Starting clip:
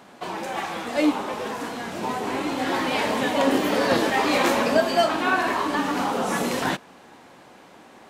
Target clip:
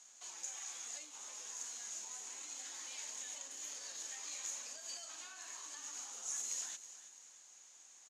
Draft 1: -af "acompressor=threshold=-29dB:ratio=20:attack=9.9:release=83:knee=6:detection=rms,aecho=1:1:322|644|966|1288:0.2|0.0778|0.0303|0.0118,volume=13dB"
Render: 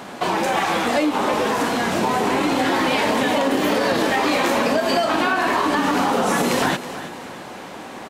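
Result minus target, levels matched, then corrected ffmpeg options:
8,000 Hz band −17.5 dB
-af "acompressor=threshold=-29dB:ratio=20:attack=9.9:release=83:knee=6:detection=rms,bandpass=frequency=6700:width_type=q:width=12:csg=0,aecho=1:1:322|644|966|1288:0.2|0.0778|0.0303|0.0118,volume=13dB"

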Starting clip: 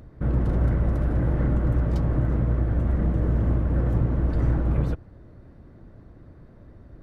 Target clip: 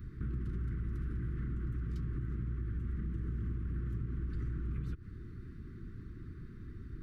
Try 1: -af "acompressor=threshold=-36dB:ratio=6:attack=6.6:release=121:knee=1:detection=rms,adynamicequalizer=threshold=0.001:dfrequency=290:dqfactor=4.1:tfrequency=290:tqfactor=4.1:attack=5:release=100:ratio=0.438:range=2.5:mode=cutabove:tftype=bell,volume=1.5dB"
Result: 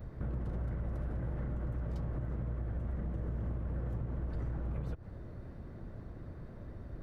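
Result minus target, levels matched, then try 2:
500 Hz band +7.0 dB
-af "acompressor=threshold=-36dB:ratio=6:attack=6.6:release=121:knee=1:detection=rms,asuperstop=centerf=690:order=8:qfactor=0.84,adynamicequalizer=threshold=0.001:dfrequency=290:dqfactor=4.1:tfrequency=290:tqfactor=4.1:attack=5:release=100:ratio=0.438:range=2.5:mode=cutabove:tftype=bell,volume=1.5dB"

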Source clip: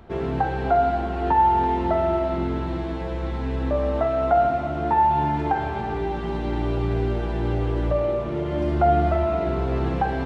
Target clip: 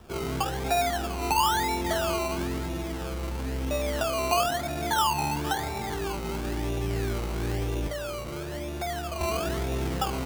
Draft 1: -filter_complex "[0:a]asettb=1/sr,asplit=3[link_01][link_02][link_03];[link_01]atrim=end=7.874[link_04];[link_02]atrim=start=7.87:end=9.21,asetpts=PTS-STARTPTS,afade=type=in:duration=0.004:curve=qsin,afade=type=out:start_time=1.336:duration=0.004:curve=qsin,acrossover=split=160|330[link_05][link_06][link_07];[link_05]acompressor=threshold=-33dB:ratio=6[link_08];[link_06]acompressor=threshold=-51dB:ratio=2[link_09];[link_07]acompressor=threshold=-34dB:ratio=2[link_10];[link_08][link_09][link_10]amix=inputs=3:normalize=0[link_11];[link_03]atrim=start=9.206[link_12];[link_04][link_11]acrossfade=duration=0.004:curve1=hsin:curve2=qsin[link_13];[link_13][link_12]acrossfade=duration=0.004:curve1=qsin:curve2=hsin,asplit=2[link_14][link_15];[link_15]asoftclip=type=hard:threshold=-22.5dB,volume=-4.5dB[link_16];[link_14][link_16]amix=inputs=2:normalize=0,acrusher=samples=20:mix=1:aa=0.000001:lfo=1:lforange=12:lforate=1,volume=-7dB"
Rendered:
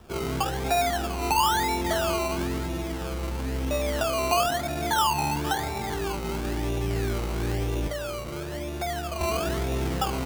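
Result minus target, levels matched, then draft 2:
hard clipping: distortion −5 dB
-filter_complex "[0:a]asettb=1/sr,asplit=3[link_01][link_02][link_03];[link_01]atrim=end=7.874[link_04];[link_02]atrim=start=7.87:end=9.21,asetpts=PTS-STARTPTS,afade=type=in:duration=0.004:curve=qsin,afade=type=out:start_time=1.336:duration=0.004:curve=qsin,acrossover=split=160|330[link_05][link_06][link_07];[link_05]acompressor=threshold=-33dB:ratio=6[link_08];[link_06]acompressor=threshold=-51dB:ratio=2[link_09];[link_07]acompressor=threshold=-34dB:ratio=2[link_10];[link_08][link_09][link_10]amix=inputs=3:normalize=0[link_11];[link_03]atrim=start=9.206[link_12];[link_04][link_11]acrossfade=duration=0.004:curve1=hsin:curve2=qsin[link_13];[link_13][link_12]acrossfade=duration=0.004:curve1=qsin:curve2=hsin,asplit=2[link_14][link_15];[link_15]asoftclip=type=hard:threshold=-31dB,volume=-4.5dB[link_16];[link_14][link_16]amix=inputs=2:normalize=0,acrusher=samples=20:mix=1:aa=0.000001:lfo=1:lforange=12:lforate=1,volume=-7dB"

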